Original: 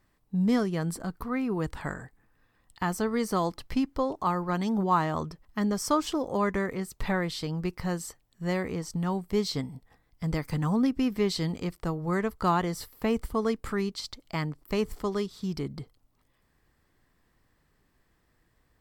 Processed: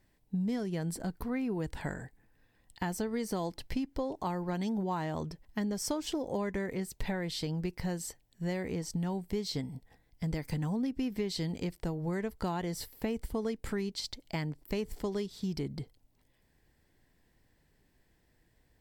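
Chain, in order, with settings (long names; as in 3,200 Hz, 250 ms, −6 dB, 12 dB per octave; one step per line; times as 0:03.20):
parametric band 1,200 Hz −13.5 dB 0.38 octaves
downward compressor, threshold −30 dBFS, peak gain reduction 9.5 dB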